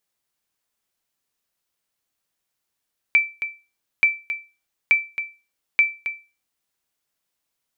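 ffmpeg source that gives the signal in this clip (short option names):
-f lavfi -i "aevalsrc='0.398*(sin(2*PI*2330*mod(t,0.88))*exp(-6.91*mod(t,0.88)/0.3)+0.282*sin(2*PI*2330*max(mod(t,0.88)-0.27,0))*exp(-6.91*max(mod(t,0.88)-0.27,0)/0.3))':d=3.52:s=44100"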